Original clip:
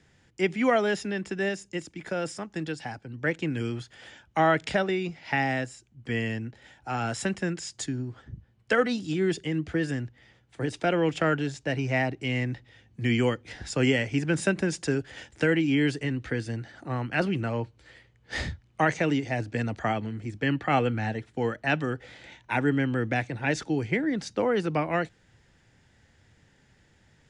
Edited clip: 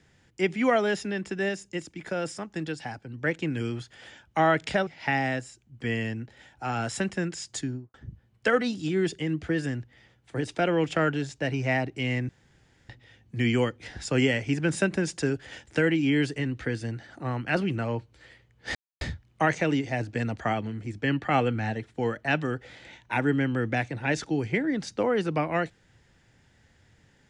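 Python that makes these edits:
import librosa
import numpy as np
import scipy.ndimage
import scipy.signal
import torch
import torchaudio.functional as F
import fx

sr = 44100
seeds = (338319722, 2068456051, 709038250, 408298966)

y = fx.studio_fade_out(x, sr, start_s=7.91, length_s=0.28)
y = fx.edit(y, sr, fx.cut(start_s=4.87, length_s=0.25),
    fx.insert_room_tone(at_s=12.54, length_s=0.6),
    fx.insert_silence(at_s=18.4, length_s=0.26), tone=tone)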